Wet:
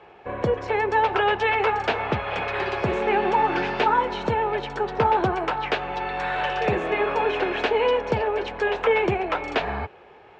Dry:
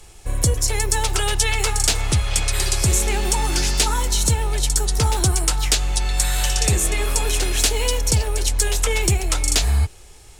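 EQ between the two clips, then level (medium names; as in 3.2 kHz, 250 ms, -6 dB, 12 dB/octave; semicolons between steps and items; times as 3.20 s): cabinet simulation 310–2100 Hz, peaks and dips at 310 Hz -6 dB, 1.3 kHz -4 dB, 2 kHz -6 dB; +8.0 dB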